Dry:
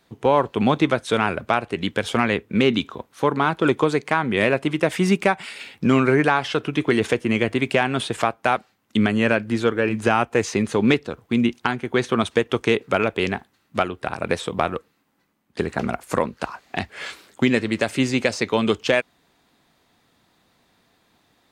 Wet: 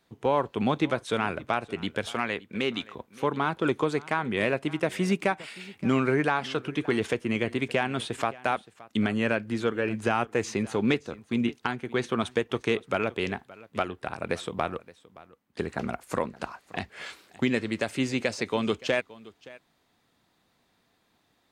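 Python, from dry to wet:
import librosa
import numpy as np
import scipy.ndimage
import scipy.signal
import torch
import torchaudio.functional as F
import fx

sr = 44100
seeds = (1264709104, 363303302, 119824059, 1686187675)

y = fx.low_shelf(x, sr, hz=330.0, db=-9.0, at=(2.06, 2.93))
y = y + 10.0 ** (-20.5 / 20.0) * np.pad(y, (int(571 * sr / 1000.0), 0))[:len(y)]
y = y * librosa.db_to_amplitude(-7.0)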